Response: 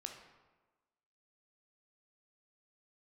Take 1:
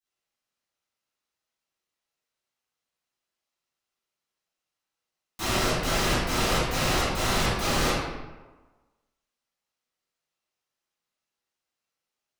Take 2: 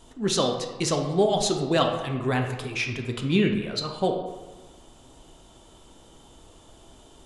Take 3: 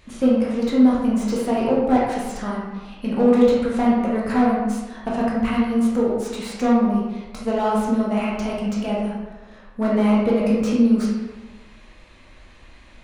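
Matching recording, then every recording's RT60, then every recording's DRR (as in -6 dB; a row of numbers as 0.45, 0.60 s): 2; 1.3, 1.3, 1.3 s; -15.0, 3.0, -6.0 dB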